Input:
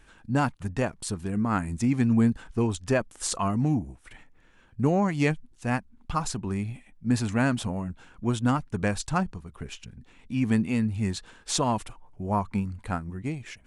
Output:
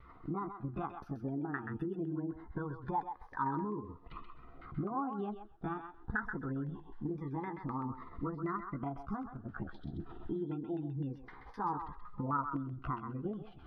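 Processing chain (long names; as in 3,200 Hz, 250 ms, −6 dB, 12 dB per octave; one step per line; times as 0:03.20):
pitch shift by two crossfaded delay taps +5.5 semitones
camcorder AGC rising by 10 dB per second
gate on every frequency bin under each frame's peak −30 dB strong
background noise white −63 dBFS
parametric band 2,100 Hz +14.5 dB 0.25 octaves
downward compressor 5 to 1, threshold −37 dBFS, peak gain reduction 17.5 dB
phaser with its sweep stopped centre 2,200 Hz, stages 6
auto-filter low-pass saw down 3.9 Hz 580–1,700 Hz
noise gate with hold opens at −52 dBFS
parametric band 660 Hz +12.5 dB 1.4 octaves
feedback echo with a high-pass in the loop 130 ms, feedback 16%, high-pass 760 Hz, level −5.5 dB
phaser whose notches keep moving one way rising 0.24 Hz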